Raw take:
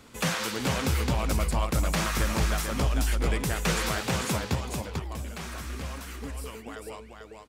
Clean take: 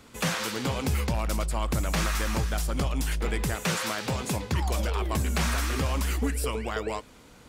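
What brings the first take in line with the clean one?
inverse comb 444 ms -4.5 dB; trim 0 dB, from 4.55 s +10.5 dB

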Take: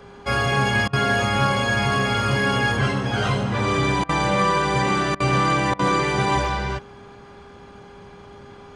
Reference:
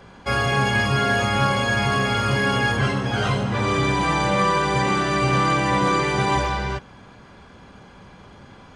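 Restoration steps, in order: de-hum 403.5 Hz, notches 3; interpolate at 0.88/4.04/5.15/5.74 s, 50 ms

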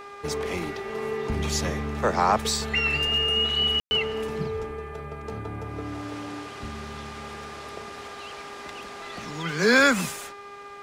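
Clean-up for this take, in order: de-hum 405 Hz, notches 6; band-stop 1.2 kHz, Q 30; room tone fill 3.80–3.91 s

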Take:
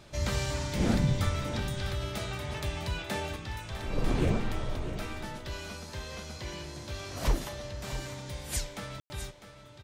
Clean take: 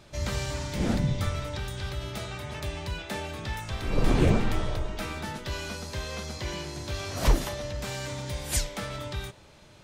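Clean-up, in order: room tone fill 9.00–9.10 s; inverse comb 652 ms -11.5 dB; gain correction +5.5 dB, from 3.36 s

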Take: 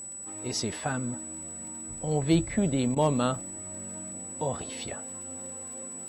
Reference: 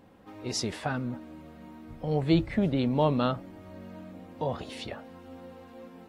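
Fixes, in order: clip repair -13 dBFS; de-click; band-stop 7.9 kHz, Q 30; interpolate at 2.95 s, 13 ms

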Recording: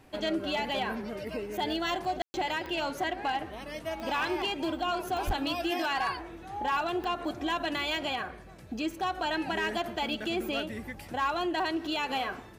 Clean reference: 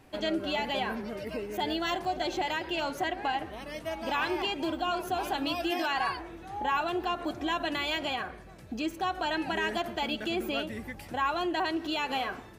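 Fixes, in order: clip repair -23.5 dBFS; de-click; 5.26–5.38 s: high-pass 140 Hz 24 dB/octave; room tone fill 2.22–2.34 s

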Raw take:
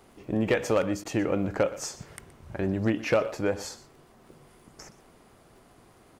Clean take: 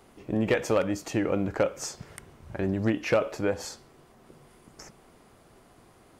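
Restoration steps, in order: de-click; interpolate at 1.04 s, 11 ms; inverse comb 121 ms -17.5 dB

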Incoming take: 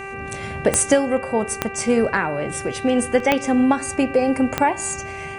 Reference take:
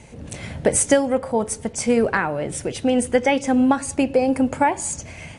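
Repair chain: de-click; de-hum 391.7 Hz, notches 7; interpolate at 3.20 s, 1.6 ms

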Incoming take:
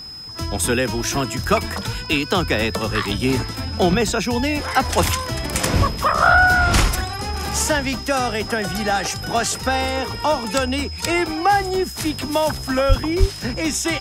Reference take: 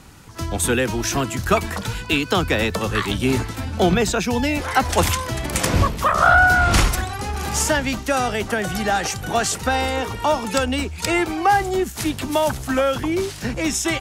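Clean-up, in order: band-stop 5.1 kHz, Q 30; 12.88–13.00 s: high-pass 140 Hz 24 dB/octave; 13.19–13.31 s: high-pass 140 Hz 24 dB/octave

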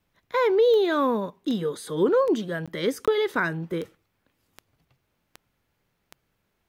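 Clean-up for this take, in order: de-click; interpolate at 2.66/3.06 s, 16 ms

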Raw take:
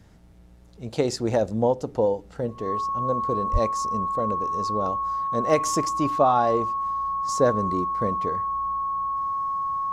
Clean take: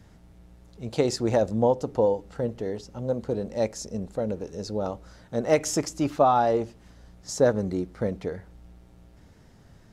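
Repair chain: band-stop 1.1 kHz, Q 30; de-plosive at 3.52 s

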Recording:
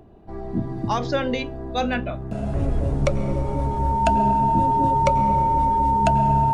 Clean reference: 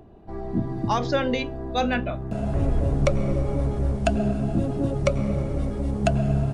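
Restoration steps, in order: band-stop 910 Hz, Q 30

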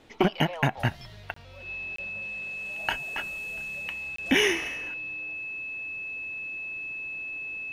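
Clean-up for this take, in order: band-stop 2.6 kHz, Q 30; interpolate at 1.34/1.96/4.16 s, 24 ms

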